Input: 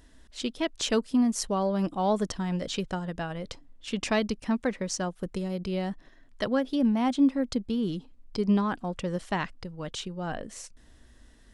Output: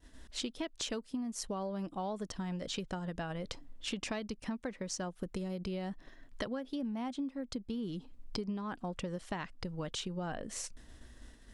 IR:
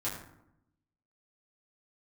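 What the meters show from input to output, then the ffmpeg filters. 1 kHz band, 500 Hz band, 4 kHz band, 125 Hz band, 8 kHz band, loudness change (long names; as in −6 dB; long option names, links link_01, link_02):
−10.5 dB, −10.5 dB, −6.0 dB, −8.0 dB, −5.5 dB, −10.5 dB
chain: -af "acompressor=threshold=-38dB:ratio=12,agate=range=-33dB:threshold=-51dB:ratio=3:detection=peak,volume=3dB"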